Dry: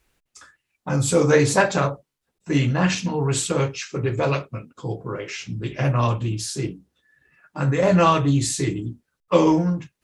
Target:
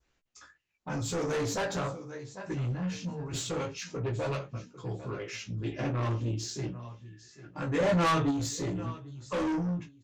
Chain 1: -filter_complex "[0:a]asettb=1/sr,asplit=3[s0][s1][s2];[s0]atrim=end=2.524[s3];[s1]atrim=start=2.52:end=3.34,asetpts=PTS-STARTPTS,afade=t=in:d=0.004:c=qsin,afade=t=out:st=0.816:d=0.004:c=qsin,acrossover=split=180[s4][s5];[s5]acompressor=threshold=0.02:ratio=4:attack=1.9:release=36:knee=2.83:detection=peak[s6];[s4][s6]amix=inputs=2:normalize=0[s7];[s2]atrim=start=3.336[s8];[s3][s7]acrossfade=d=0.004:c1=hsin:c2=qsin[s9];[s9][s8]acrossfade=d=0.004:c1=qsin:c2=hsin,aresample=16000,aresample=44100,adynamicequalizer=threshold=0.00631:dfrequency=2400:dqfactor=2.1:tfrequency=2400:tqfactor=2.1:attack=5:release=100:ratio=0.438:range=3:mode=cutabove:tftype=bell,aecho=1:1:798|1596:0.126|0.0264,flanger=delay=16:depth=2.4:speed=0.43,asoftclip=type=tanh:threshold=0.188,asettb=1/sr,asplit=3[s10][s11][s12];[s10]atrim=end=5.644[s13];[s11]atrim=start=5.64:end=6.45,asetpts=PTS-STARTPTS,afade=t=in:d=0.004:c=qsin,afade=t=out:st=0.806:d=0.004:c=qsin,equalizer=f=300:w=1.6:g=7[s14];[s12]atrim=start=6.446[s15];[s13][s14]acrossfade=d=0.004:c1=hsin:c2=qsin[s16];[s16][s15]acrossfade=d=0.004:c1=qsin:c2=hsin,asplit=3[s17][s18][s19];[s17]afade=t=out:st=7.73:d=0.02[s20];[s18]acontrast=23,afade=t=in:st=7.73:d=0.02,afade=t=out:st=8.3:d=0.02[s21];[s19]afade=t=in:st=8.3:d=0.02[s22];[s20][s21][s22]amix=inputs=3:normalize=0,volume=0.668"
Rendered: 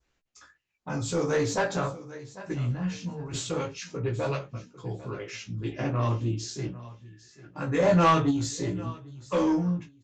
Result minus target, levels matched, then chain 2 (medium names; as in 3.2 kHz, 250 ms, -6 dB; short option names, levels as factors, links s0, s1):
saturation: distortion -8 dB
-filter_complex "[0:a]asettb=1/sr,asplit=3[s0][s1][s2];[s0]atrim=end=2.524[s3];[s1]atrim=start=2.52:end=3.34,asetpts=PTS-STARTPTS,afade=t=in:d=0.004:c=qsin,afade=t=out:st=0.816:d=0.004:c=qsin,acrossover=split=180[s4][s5];[s5]acompressor=threshold=0.02:ratio=4:attack=1.9:release=36:knee=2.83:detection=peak[s6];[s4][s6]amix=inputs=2:normalize=0[s7];[s2]atrim=start=3.336[s8];[s3][s7]acrossfade=d=0.004:c1=hsin:c2=qsin[s9];[s9][s8]acrossfade=d=0.004:c1=qsin:c2=hsin,aresample=16000,aresample=44100,adynamicequalizer=threshold=0.00631:dfrequency=2400:dqfactor=2.1:tfrequency=2400:tqfactor=2.1:attack=5:release=100:ratio=0.438:range=3:mode=cutabove:tftype=bell,aecho=1:1:798|1596:0.126|0.0264,flanger=delay=16:depth=2.4:speed=0.43,asoftclip=type=tanh:threshold=0.0631,asettb=1/sr,asplit=3[s10][s11][s12];[s10]atrim=end=5.644[s13];[s11]atrim=start=5.64:end=6.45,asetpts=PTS-STARTPTS,afade=t=in:d=0.004:c=qsin,afade=t=out:st=0.806:d=0.004:c=qsin,equalizer=f=300:w=1.6:g=7[s14];[s12]atrim=start=6.446[s15];[s13][s14]acrossfade=d=0.004:c1=hsin:c2=qsin[s16];[s16][s15]acrossfade=d=0.004:c1=qsin:c2=hsin,asplit=3[s17][s18][s19];[s17]afade=t=out:st=7.73:d=0.02[s20];[s18]acontrast=23,afade=t=in:st=7.73:d=0.02,afade=t=out:st=8.3:d=0.02[s21];[s19]afade=t=in:st=8.3:d=0.02[s22];[s20][s21][s22]amix=inputs=3:normalize=0,volume=0.668"